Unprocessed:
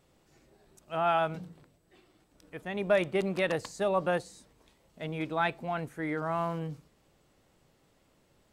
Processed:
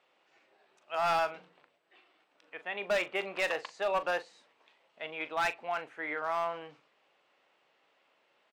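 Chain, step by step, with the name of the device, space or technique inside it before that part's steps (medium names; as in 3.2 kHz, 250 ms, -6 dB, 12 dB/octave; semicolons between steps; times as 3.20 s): megaphone (band-pass 680–3100 Hz; peaking EQ 2.7 kHz +5 dB 0.59 oct; hard clipper -26.5 dBFS, distortion -12 dB; doubling 40 ms -13 dB); trim +2 dB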